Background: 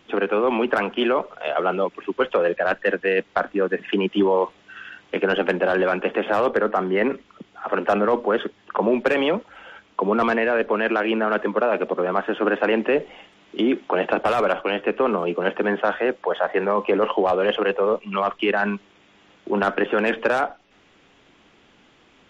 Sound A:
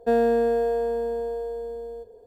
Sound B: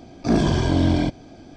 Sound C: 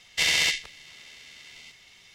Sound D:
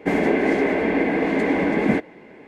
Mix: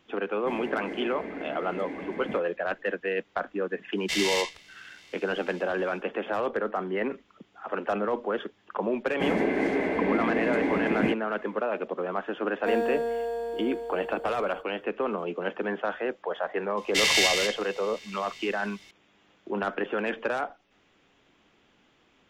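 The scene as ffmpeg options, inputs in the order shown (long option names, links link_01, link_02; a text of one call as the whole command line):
ffmpeg -i bed.wav -i cue0.wav -i cue1.wav -i cue2.wav -i cue3.wav -filter_complex "[4:a]asplit=2[link_01][link_02];[3:a]asplit=2[link_03][link_04];[0:a]volume=-8.5dB[link_05];[1:a]lowshelf=frequency=460:gain=-10.5[link_06];[link_04]aecho=1:1:188:0.596[link_07];[link_01]atrim=end=2.47,asetpts=PTS-STARTPTS,volume=-17dB,afade=type=in:duration=0.004:curve=hsin,afade=type=out:start_time=2.466:duration=0.004:curve=hsin,adelay=400[link_08];[link_03]atrim=end=2.14,asetpts=PTS-STARTPTS,volume=-6dB,afade=type=in:duration=0.1,afade=type=out:start_time=2.04:duration=0.1,adelay=3910[link_09];[link_02]atrim=end=2.47,asetpts=PTS-STARTPTS,volume=-6.5dB,afade=type=in:duration=0.004:curve=hsin,afade=type=out:start_time=2.466:duration=0.004:curve=hsin,adelay=403074S[link_10];[link_06]atrim=end=2.26,asetpts=PTS-STARTPTS,volume=-2dB,afade=type=in:duration=0.004:curve=hsin,afade=type=out:start_time=2.256:duration=0.004:curve=hsin,adelay=12590[link_11];[link_07]atrim=end=2.14,asetpts=PTS-STARTPTS,volume=-0.5dB,afade=type=in:duration=0.004:curve=hsin,afade=type=out:start_time=2.136:duration=0.004:curve=hsin,adelay=16770[link_12];[link_05][link_08][link_09][link_10][link_11][link_12]amix=inputs=6:normalize=0" out.wav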